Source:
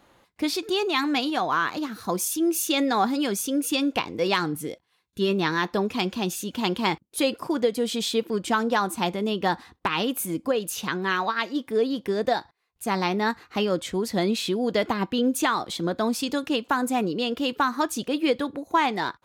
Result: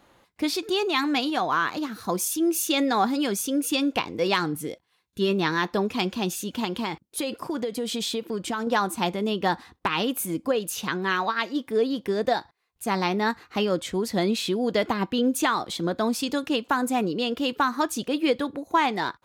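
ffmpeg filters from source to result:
-filter_complex "[0:a]asettb=1/sr,asplit=3[a][b][c];[a]atrim=end=6.644[d];[b]atrim=start=6.64:end=8.67,asetpts=PTS-STARTPTS,afade=t=in:d=0.004:c=qsin,afade=t=out:st=2.026:d=0.004:c=qsin,acompressor=threshold=-24dB:ratio=6:attack=3.2:release=140:knee=1:detection=peak[e];[c]atrim=start=8.666[f];[d][e]acrossfade=d=0.004:c1=hsin:c2=qsin[g];[g][f]acrossfade=d=0.004:c1=qsin:c2=hsin"

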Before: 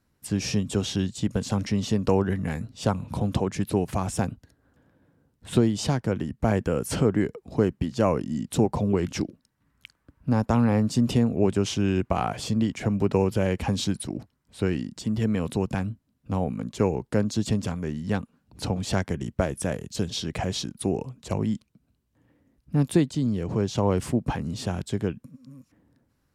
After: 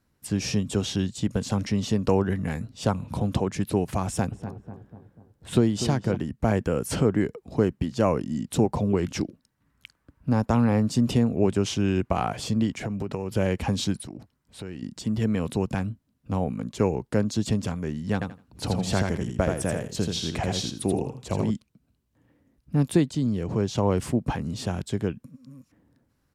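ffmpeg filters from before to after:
-filter_complex "[0:a]asplit=3[a][b][c];[a]afade=t=out:st=4.31:d=0.02[d];[b]asplit=2[e][f];[f]adelay=246,lowpass=f=1.3k:p=1,volume=-10dB,asplit=2[g][h];[h]adelay=246,lowpass=f=1.3k:p=1,volume=0.53,asplit=2[i][j];[j]adelay=246,lowpass=f=1.3k:p=1,volume=0.53,asplit=2[k][l];[l]adelay=246,lowpass=f=1.3k:p=1,volume=0.53,asplit=2[m][n];[n]adelay=246,lowpass=f=1.3k:p=1,volume=0.53,asplit=2[o][p];[p]adelay=246,lowpass=f=1.3k:p=1,volume=0.53[q];[e][g][i][k][m][o][q]amix=inputs=7:normalize=0,afade=t=in:st=4.31:d=0.02,afade=t=out:st=6.15:d=0.02[r];[c]afade=t=in:st=6.15:d=0.02[s];[d][r][s]amix=inputs=3:normalize=0,asettb=1/sr,asplit=3[t][u][v];[t]atrim=end=12.754[w];[u]atrim=start=12.75:end=13.32,asetpts=PTS-STARTPTS,afade=t=in:d=0.004:c=qsin,afade=t=out:st=0.566:d=0.004:c=qsin,acompressor=threshold=-25dB:ratio=10:attack=3.2:release=140:knee=1:detection=peak[x];[v]atrim=start=13.316[y];[w][x]acrossfade=d=0.004:c1=hsin:c2=qsin[z];[z][y]acrossfade=d=0.004:c1=qsin:c2=hsin,asettb=1/sr,asplit=3[aa][ab][ac];[aa]atrim=end=13.964[ad];[ab]atrim=start=13.96:end=14.83,asetpts=PTS-STARTPTS,afade=t=in:d=0.004:c=qsin,afade=t=out:st=0.866:d=0.004:c=qsin,acompressor=threshold=-36dB:ratio=3:attack=3.2:release=140:knee=1:detection=peak[ae];[ac]atrim=start=14.826[af];[ad][ae]acrossfade=d=0.004:c1=hsin:c2=qsin[ag];[ag][af]acrossfade=d=0.004:c1=qsin:c2=hsin,asettb=1/sr,asplit=3[ah][ai][aj];[ah]atrim=end=18.134[ak];[ai]atrim=start=18.13:end=21.51,asetpts=PTS-STARTPTS,afade=t=in:d=0.004:c=qsin,afade=t=out:st=3.376:d=0.004:c=qsin,aecho=1:1:82|164|246:0.631|0.12|0.0228,atrim=end_sample=149058[al];[aj]atrim=start=21.506[am];[ak][al]acrossfade=d=0.004:c1=hsin:c2=qsin[an];[an][am]acrossfade=d=0.004:c1=qsin:c2=hsin"

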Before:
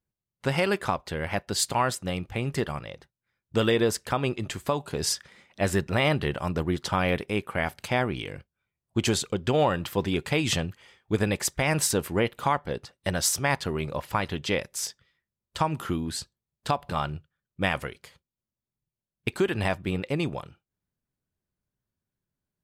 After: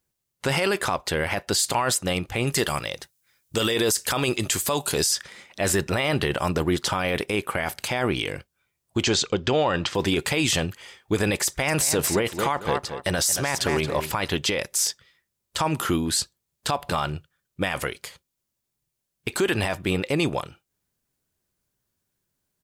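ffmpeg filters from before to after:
-filter_complex "[0:a]asettb=1/sr,asplit=3[a][b][c];[a]atrim=end=2.474[d];[b]atrim=start=2.47:end=5.11,asetpts=PTS-STARTPTS,afade=t=in:d=0.004:c=qsin,afade=t=out:st=2.636:d=0.004:c=qsin,highshelf=f=3.7k:g=11.5[e];[c]atrim=start=5.106[f];[d][e]acrossfade=d=0.004:c1=hsin:c2=qsin[g];[g][f]acrossfade=d=0.004:c1=qsin:c2=hsin,asettb=1/sr,asplit=3[h][i][j];[h]atrim=end=9.034[k];[i]atrim=start=9.03:end=9.95,asetpts=PTS-STARTPTS,afade=t=in:d=0.004:c=qsin,afade=t=out:st=0.916:d=0.004:c=qsin,lowpass=f=6.2k:w=0.5412,lowpass=f=6.2k:w=1.3066[l];[j]atrim=start=9.946[m];[k][l]acrossfade=d=0.004:c1=hsin:c2=qsin[n];[n][m]acrossfade=d=0.004:c1=qsin:c2=hsin,asettb=1/sr,asplit=3[o][p][q];[o]atrim=end=11.464[r];[p]atrim=start=11.46:end=14.11,asetpts=PTS-STARTPTS,afade=t=in:d=0.004:c=qsin,afade=t=out:st=2.646:d=0.004:c=qsin,asplit=2[s][t];[t]adelay=224,lowpass=f=4.4k:p=1,volume=-10.5dB,asplit=2[u][v];[v]adelay=224,lowpass=f=4.4k:p=1,volume=0.24,asplit=2[w][x];[x]adelay=224,lowpass=f=4.4k:p=1,volume=0.24[y];[s][u][w][y]amix=inputs=4:normalize=0,atrim=end_sample=116865[z];[q]atrim=start=14.106[aa];[r][z]acrossfade=d=0.004:c1=hsin:c2=qsin[ab];[ab][aa]acrossfade=d=0.004:c1=qsin:c2=hsin,firequalizer=gain_entry='entry(210,0);entry(310,4);entry(6900,11)':delay=0.05:min_phase=1,alimiter=limit=-16.5dB:level=0:latency=1:release=22,volume=3.5dB"

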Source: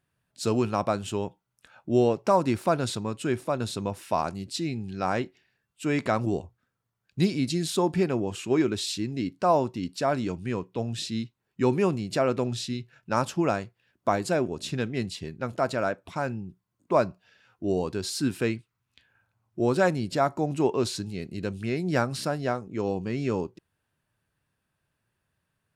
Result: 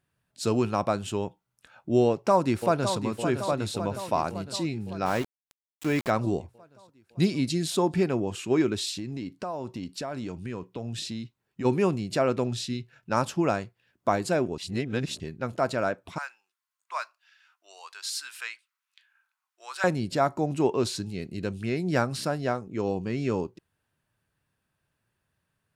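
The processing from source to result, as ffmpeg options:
-filter_complex "[0:a]asplit=2[a][b];[b]afade=t=in:st=2.06:d=0.01,afade=t=out:st=2.97:d=0.01,aecho=0:1:560|1120|1680|2240|2800|3360|3920|4480|5040:0.375837|0.244294|0.158791|0.103214|0.0670893|0.0436081|0.0283452|0.0184244|0.0119759[c];[a][c]amix=inputs=2:normalize=0,asplit=3[d][e][f];[d]afade=t=out:st=5.05:d=0.02[g];[e]aeval=exprs='val(0)*gte(abs(val(0)),0.02)':c=same,afade=t=in:st=5.05:d=0.02,afade=t=out:st=6.09:d=0.02[h];[f]afade=t=in:st=6.09:d=0.02[i];[g][h][i]amix=inputs=3:normalize=0,asplit=3[j][k][l];[j]afade=t=out:st=8.89:d=0.02[m];[k]acompressor=threshold=-30dB:ratio=6:attack=3.2:release=140:knee=1:detection=peak,afade=t=in:st=8.89:d=0.02,afade=t=out:st=11.64:d=0.02[n];[l]afade=t=in:st=11.64:d=0.02[o];[m][n][o]amix=inputs=3:normalize=0,asettb=1/sr,asplit=3[p][q][r];[p]atrim=end=16.184[s];[q]atrim=start=16.18:end=19.84,asetpts=PTS-STARTPTS,afade=t=in:d=0.004:c=qsin,afade=t=out:st=3.656:d=0.004:c=qsin,highpass=f=1.1k:w=0.5412,highpass=f=1.1k:w=1.3066[t];[r]atrim=start=19.836[u];[s][t]acrossfade=d=0.004:c1=hsin:c2=qsin[v];[v][u]acrossfade=d=0.004:c1=qsin:c2=hsin,asplit=3[w][x][y];[w]atrim=end=14.582[z];[x]atrim=start=14.578:end=15.202,asetpts=PTS-STARTPTS,areverse[aa];[y]atrim=start=15.198[ab];[z][aa]acrossfade=d=0.004:c1=hsin:c2=hsin[ac];[ac][ab]acrossfade=d=0.004:c1=hsin:c2=hsin"

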